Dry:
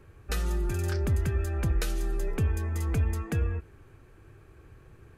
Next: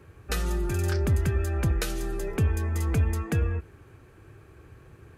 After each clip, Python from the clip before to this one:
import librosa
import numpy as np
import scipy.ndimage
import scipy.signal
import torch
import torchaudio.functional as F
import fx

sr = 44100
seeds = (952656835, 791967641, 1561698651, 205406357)

y = scipy.signal.sosfilt(scipy.signal.butter(2, 55.0, 'highpass', fs=sr, output='sos'), x)
y = y * librosa.db_to_amplitude(3.5)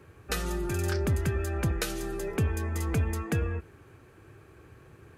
y = fx.low_shelf(x, sr, hz=67.0, db=-10.5)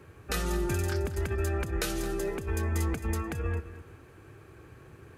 y = fx.over_compress(x, sr, threshold_db=-29.0, ratio=-0.5)
y = fx.echo_feedback(y, sr, ms=218, feedback_pct=27, wet_db=-14.0)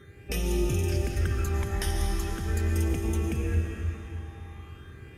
y = fx.dmg_buzz(x, sr, base_hz=400.0, harmonics=9, level_db=-57.0, tilt_db=-4, odd_only=False)
y = fx.phaser_stages(y, sr, stages=12, low_hz=430.0, high_hz=1600.0, hz=0.41, feedback_pct=30)
y = fx.rev_freeverb(y, sr, rt60_s=3.9, hf_ratio=0.9, predelay_ms=70, drr_db=1.5)
y = y * librosa.db_to_amplitude(1.5)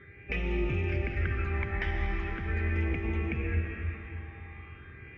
y = fx.ladder_lowpass(x, sr, hz=2400.0, resonance_pct=70)
y = y * librosa.db_to_amplitude(8.0)